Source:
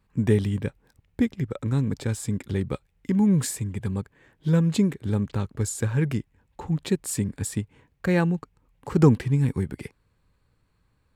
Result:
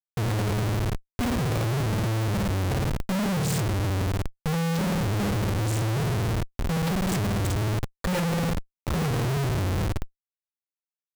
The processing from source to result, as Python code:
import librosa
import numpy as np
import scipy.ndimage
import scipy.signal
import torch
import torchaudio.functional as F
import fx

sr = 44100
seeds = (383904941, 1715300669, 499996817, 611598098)

p1 = scipy.signal.sosfilt(scipy.signal.cheby1(2, 1.0, 9900.0, 'lowpass', fs=sr, output='sos'), x)
p2 = fx.low_shelf(p1, sr, hz=160.0, db=10.0)
p3 = fx.env_lowpass(p2, sr, base_hz=2600.0, full_db=-17.0)
p4 = p3 + 0.85 * np.pad(p3, (int(1.7 * sr / 1000.0), 0))[:len(p3)]
p5 = p4 + fx.room_flutter(p4, sr, wall_m=9.3, rt60_s=0.87, dry=0)
p6 = fx.schmitt(p5, sr, flips_db=-29.0)
y = p6 * 10.0 ** (-7.0 / 20.0)